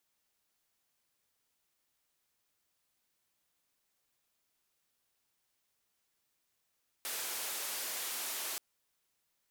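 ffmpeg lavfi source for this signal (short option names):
-f lavfi -i "anoisesrc=c=white:d=1.53:r=44100:seed=1,highpass=f=380,lowpass=f=16000,volume=-32.6dB"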